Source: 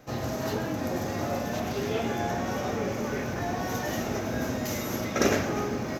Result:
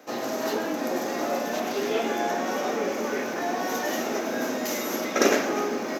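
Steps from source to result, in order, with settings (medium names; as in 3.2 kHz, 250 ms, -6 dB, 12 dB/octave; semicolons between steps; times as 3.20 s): high-pass 250 Hz 24 dB/octave; trim +4 dB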